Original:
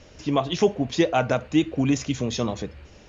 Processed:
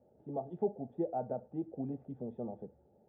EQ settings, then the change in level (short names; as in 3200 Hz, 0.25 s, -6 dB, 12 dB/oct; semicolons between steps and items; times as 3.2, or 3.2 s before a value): vocal tract filter u; BPF 190–3400 Hz; fixed phaser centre 1500 Hz, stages 8; +4.5 dB